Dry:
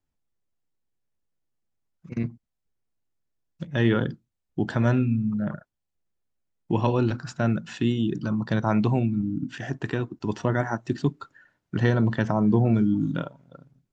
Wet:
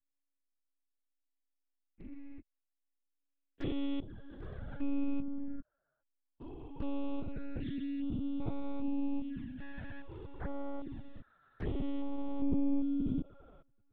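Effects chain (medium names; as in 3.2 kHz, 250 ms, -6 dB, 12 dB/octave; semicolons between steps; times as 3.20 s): spectrogram pixelated in time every 400 ms; monotone LPC vocoder at 8 kHz 280 Hz; touch-sensitive flanger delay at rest 11.3 ms, full sweep at -25 dBFS; trim -7 dB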